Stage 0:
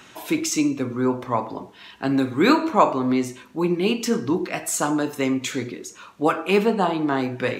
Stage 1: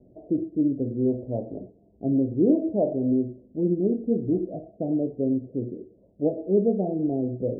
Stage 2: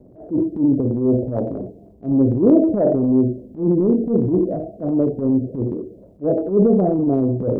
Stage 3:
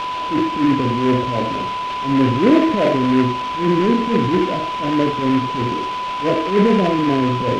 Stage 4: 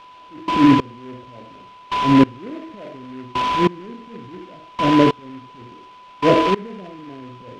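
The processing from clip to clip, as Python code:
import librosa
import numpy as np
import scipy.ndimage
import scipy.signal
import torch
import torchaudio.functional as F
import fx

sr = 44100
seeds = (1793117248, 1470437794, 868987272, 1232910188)

y1 = scipy.signal.sosfilt(scipy.signal.butter(12, 660.0, 'lowpass', fs=sr, output='sos'), x)
y1 = fx.low_shelf(y1, sr, hz=73.0, db=11.5)
y1 = y1 * 10.0 ** (-2.5 / 20.0)
y2 = fx.transient(y1, sr, attack_db=-12, sustain_db=6)
y2 = y2 * 10.0 ** (8.5 / 20.0)
y3 = y2 + 10.0 ** (-21.0 / 20.0) * np.sin(2.0 * np.pi * 1000.0 * np.arange(len(y2)) / sr)
y3 = fx.noise_mod_delay(y3, sr, seeds[0], noise_hz=1700.0, depth_ms=0.062)
y4 = fx.step_gate(y3, sr, bpm=94, pattern='...xx....', floor_db=-24.0, edge_ms=4.5)
y4 = y4 * 10.0 ** (4.0 / 20.0)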